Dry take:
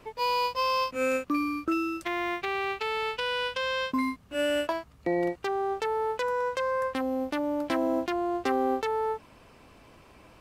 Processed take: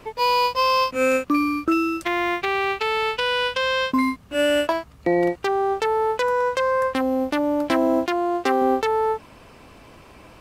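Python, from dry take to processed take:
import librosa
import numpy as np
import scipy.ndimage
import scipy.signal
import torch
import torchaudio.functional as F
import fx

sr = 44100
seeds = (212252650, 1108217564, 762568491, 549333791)

y = fx.low_shelf(x, sr, hz=140.0, db=-11.5, at=(8.05, 8.62))
y = y * 10.0 ** (7.5 / 20.0)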